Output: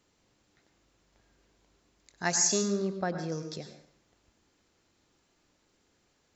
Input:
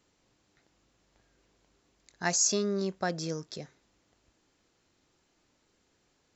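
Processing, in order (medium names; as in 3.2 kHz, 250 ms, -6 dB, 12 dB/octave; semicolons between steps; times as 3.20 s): 2.70–3.32 s: low-pass 1.6 kHz 6 dB/octave; plate-style reverb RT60 0.57 s, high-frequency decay 0.95×, pre-delay 85 ms, DRR 7.5 dB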